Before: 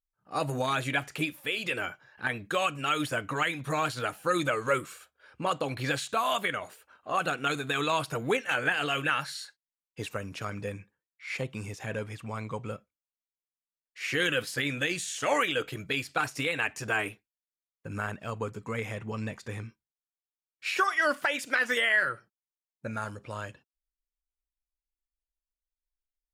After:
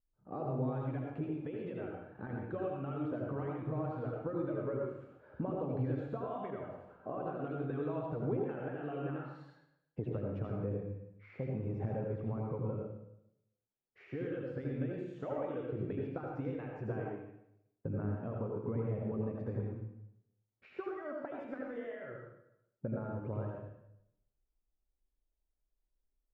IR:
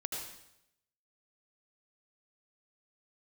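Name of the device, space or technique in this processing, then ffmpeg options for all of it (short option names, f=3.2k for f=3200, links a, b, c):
television next door: -filter_complex "[0:a]acompressor=threshold=-42dB:ratio=6,lowpass=550[a];[1:a]atrim=start_sample=2205[b];[a][b]afir=irnorm=-1:irlink=0,volume=9.5dB"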